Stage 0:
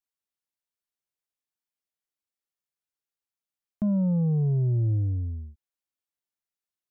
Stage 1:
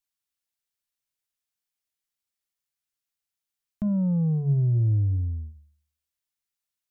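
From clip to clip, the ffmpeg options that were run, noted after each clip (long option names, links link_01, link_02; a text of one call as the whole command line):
ffmpeg -i in.wav -af "equalizer=frequency=460:width=0.4:gain=-8.5,bandreject=frequency=73.85:width_type=h:width=4,bandreject=frequency=147.7:width_type=h:width=4,bandreject=frequency=221.55:width_type=h:width=4,bandreject=frequency=295.4:width_type=h:width=4,bandreject=frequency=369.25:width_type=h:width=4,volume=5dB" out.wav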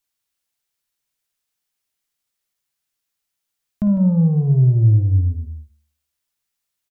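ffmpeg -i in.wav -af "aecho=1:1:54|154:0.335|0.282,volume=7.5dB" out.wav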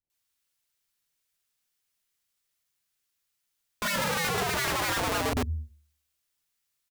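ffmpeg -i in.wav -filter_complex "[0:a]acrossover=split=240|720[link_01][link_02][link_03];[link_02]adelay=30[link_04];[link_03]adelay=100[link_05];[link_01][link_04][link_05]amix=inputs=3:normalize=0,aeval=exprs='(mod(15*val(0)+1,2)-1)/15':channel_layout=same" out.wav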